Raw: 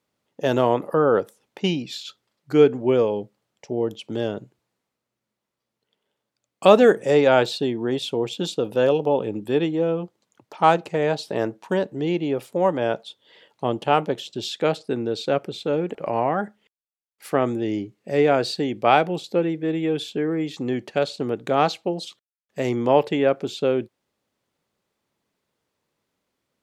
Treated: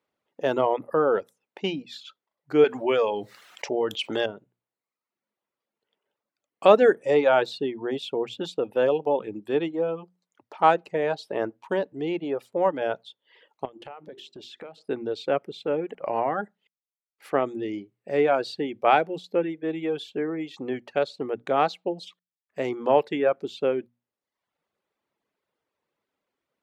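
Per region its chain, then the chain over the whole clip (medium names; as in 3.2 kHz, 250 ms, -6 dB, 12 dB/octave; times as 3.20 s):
2.64–4.26 s: tilt shelf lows -7.5 dB, about 700 Hz + level flattener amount 50%
13.65–14.78 s: hum notches 50/100/150/200/250/300/350/400 Hz + compression 16:1, threshold -33 dBFS
whole clip: hum notches 60/120/180/240 Hz; reverb removal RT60 0.73 s; tone controls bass -8 dB, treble -11 dB; trim -1.5 dB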